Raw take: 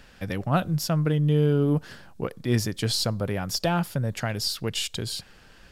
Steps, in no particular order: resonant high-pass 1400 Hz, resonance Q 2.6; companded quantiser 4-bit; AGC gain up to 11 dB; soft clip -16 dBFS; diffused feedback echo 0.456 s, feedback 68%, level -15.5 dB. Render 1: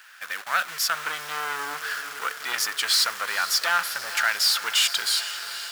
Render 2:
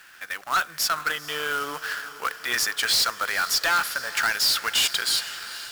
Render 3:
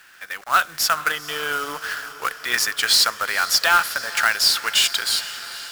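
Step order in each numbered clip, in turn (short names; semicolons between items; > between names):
AGC > diffused feedback echo > companded quantiser > soft clip > resonant high-pass; AGC > resonant high-pass > soft clip > diffused feedback echo > companded quantiser; resonant high-pass > companded quantiser > soft clip > AGC > diffused feedback echo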